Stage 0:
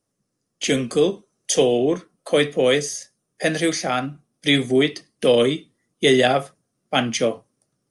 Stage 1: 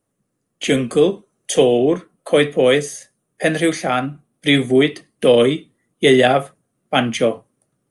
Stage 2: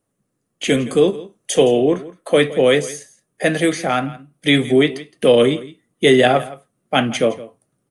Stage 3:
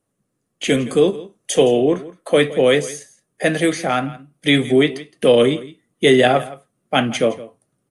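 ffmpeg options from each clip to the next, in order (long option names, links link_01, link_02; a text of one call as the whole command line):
ffmpeg -i in.wav -af "equalizer=frequency=5300:width=1.9:gain=-12.5,volume=4dB" out.wav
ffmpeg -i in.wav -af "aecho=1:1:166:0.126" out.wav
ffmpeg -i in.wav -ar 32000 -c:a libmp3lame -b:a 80k out.mp3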